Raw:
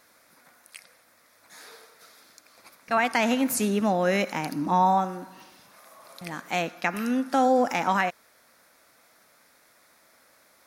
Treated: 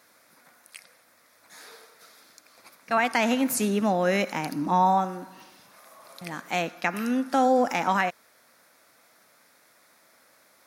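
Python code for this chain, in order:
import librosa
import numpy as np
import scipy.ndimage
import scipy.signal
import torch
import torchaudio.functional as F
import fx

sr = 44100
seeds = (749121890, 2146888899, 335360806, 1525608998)

y = scipy.signal.sosfilt(scipy.signal.butter(2, 88.0, 'highpass', fs=sr, output='sos'), x)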